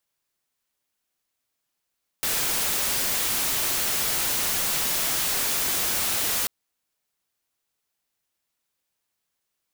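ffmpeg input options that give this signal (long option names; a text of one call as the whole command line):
ffmpeg -f lavfi -i "anoisesrc=color=white:amplitude=0.0974:duration=4.24:sample_rate=44100:seed=1" out.wav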